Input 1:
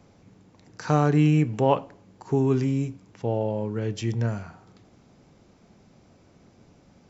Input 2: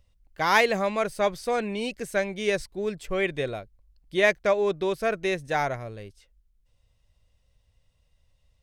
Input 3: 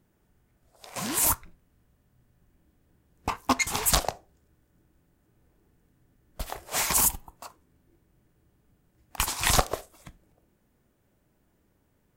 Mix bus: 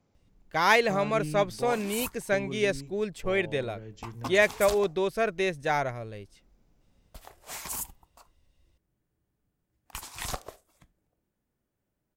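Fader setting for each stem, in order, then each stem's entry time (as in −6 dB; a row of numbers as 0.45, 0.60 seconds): −16.0, −1.0, −12.5 decibels; 0.00, 0.15, 0.75 seconds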